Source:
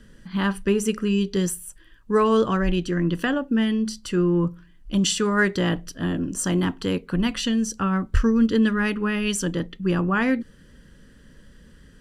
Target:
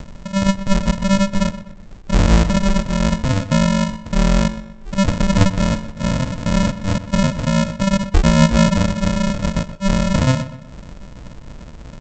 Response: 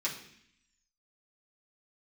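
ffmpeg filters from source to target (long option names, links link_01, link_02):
-filter_complex "[0:a]acompressor=mode=upward:threshold=-31dB:ratio=2.5,aresample=16000,acrusher=samples=41:mix=1:aa=0.000001,aresample=44100,asplit=2[link_01][link_02];[link_02]adelay=124,lowpass=frequency=3400:poles=1,volume=-13.5dB,asplit=2[link_03][link_04];[link_04]adelay=124,lowpass=frequency=3400:poles=1,volume=0.41,asplit=2[link_05][link_06];[link_06]adelay=124,lowpass=frequency=3400:poles=1,volume=0.41,asplit=2[link_07][link_08];[link_08]adelay=124,lowpass=frequency=3400:poles=1,volume=0.41[link_09];[link_01][link_03][link_05][link_07][link_09]amix=inputs=5:normalize=0,volume=6dB"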